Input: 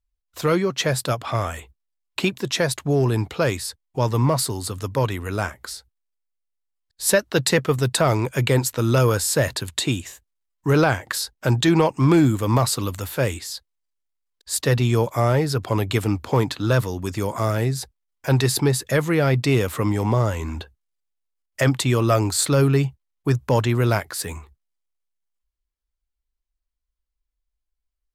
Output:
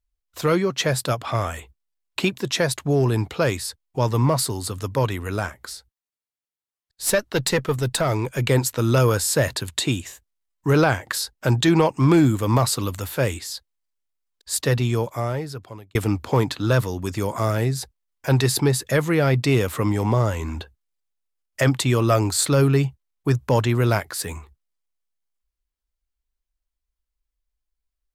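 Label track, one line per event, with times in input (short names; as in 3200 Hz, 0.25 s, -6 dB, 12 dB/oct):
5.390000	8.490000	tube stage drive 8 dB, bias 0.45
14.530000	15.950000	fade out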